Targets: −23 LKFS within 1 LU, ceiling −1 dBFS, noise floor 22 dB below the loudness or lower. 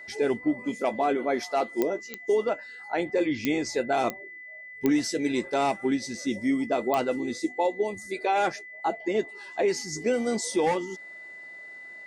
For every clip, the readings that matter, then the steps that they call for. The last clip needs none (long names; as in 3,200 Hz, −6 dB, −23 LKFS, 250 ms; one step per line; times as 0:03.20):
number of clicks 6; interfering tone 2,000 Hz; level of the tone −41 dBFS; integrated loudness −27.5 LKFS; sample peak −8.0 dBFS; target loudness −23.0 LKFS
→ click removal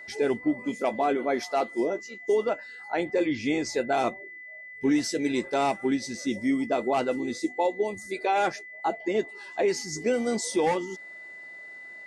number of clicks 0; interfering tone 2,000 Hz; level of the tone −41 dBFS
→ notch filter 2,000 Hz, Q 30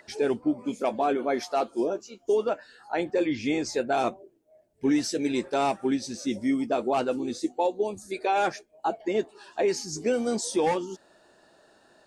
interfering tone none found; integrated loudness −28.0 LKFS; sample peak −15.0 dBFS; target loudness −23.0 LKFS
→ level +5 dB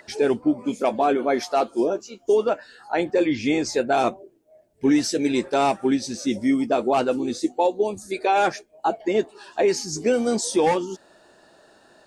integrated loudness −23.0 LKFS; sample peak −10.0 dBFS; background noise floor −57 dBFS